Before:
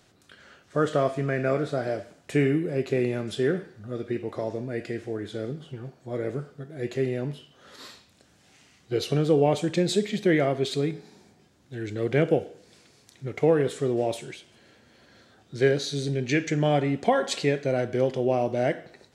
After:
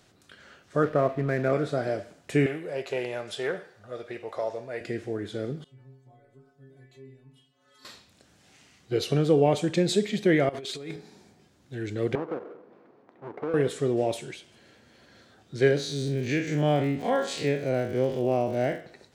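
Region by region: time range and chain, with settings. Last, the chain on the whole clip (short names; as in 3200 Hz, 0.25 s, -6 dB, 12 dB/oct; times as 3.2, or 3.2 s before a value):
0.83–1.53 steep low-pass 2400 Hz + backlash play -38.5 dBFS
2.46–4.81 resonant low shelf 410 Hz -11.5 dB, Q 1.5 + Doppler distortion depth 0.11 ms
5.64–7.85 compressor 12:1, threshold -37 dBFS + metallic resonator 130 Hz, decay 0.52 s, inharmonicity 0.008
10.49–10.96 low shelf 320 Hz -12 dB + negative-ratio compressor -37 dBFS
12.15–13.54 half-waves squared off + Butterworth band-pass 540 Hz, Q 0.58 + compressor 2:1, threshold -38 dBFS
15.76–18.79 time blur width 84 ms + crackle 150/s -40 dBFS
whole clip: dry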